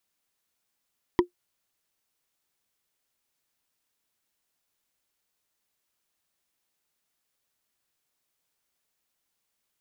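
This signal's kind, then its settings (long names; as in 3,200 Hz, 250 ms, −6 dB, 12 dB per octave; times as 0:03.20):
struck wood, lowest mode 354 Hz, decay 0.11 s, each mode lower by 5 dB, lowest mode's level −11.5 dB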